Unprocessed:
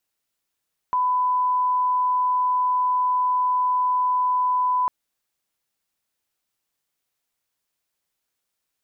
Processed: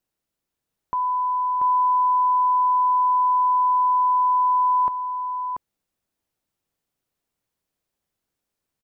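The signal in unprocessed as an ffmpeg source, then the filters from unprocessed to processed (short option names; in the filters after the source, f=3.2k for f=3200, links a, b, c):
-f lavfi -i "sine=f=1000:d=3.95:r=44100,volume=0.06dB"
-af "tiltshelf=f=730:g=6,aecho=1:1:685:0.596"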